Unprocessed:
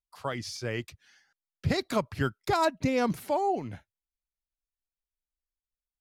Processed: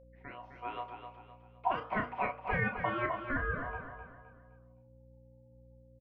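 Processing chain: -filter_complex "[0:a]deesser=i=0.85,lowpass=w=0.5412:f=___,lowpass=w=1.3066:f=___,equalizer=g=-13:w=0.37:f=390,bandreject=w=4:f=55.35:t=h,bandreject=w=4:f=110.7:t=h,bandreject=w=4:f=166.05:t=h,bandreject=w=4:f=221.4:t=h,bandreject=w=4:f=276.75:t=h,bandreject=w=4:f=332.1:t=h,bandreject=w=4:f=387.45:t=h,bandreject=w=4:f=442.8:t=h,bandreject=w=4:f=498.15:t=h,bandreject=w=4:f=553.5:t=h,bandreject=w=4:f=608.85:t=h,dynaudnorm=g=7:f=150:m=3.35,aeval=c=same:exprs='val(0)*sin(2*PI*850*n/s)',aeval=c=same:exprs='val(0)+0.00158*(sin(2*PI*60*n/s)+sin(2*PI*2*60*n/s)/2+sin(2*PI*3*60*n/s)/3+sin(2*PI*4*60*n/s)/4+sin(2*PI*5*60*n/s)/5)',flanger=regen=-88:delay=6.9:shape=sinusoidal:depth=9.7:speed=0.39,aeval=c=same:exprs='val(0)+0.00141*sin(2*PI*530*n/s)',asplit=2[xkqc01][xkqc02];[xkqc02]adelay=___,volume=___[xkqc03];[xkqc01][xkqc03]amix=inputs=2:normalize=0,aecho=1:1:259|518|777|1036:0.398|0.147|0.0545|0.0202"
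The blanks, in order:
1.5k, 1.5k, 33, 0.447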